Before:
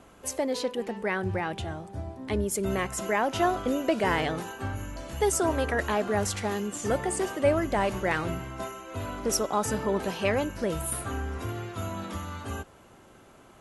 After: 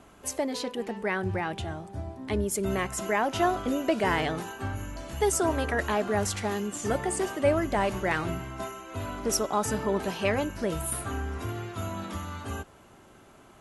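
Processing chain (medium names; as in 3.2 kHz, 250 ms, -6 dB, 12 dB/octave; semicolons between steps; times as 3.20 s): band-stop 510 Hz, Q 12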